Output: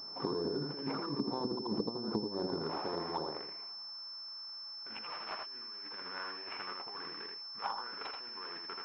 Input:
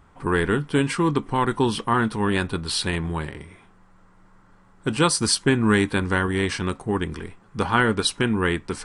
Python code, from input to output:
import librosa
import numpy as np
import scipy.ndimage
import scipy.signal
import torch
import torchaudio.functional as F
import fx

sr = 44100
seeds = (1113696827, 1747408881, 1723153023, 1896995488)

p1 = scipy.ndimage.median_filter(x, 25, mode='constant')
p2 = fx.air_absorb(p1, sr, metres=270.0)
p3 = fx.over_compress(p2, sr, threshold_db=-28.0, ratio=-0.5)
p4 = fx.filter_sweep_highpass(p3, sr, from_hz=340.0, to_hz=1300.0, start_s=2.08, end_s=4.13, q=0.76)
p5 = p4 + fx.echo_single(p4, sr, ms=81, db=-3.5, dry=0)
p6 = fx.env_lowpass_down(p5, sr, base_hz=380.0, full_db=-29.0)
y = fx.pwm(p6, sr, carrier_hz=5300.0)